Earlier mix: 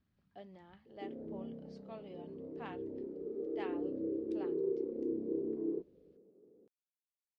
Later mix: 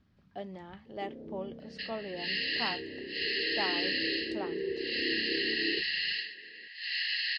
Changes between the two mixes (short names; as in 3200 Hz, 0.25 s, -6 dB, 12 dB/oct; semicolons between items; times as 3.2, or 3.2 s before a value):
speech +11.0 dB; second sound: unmuted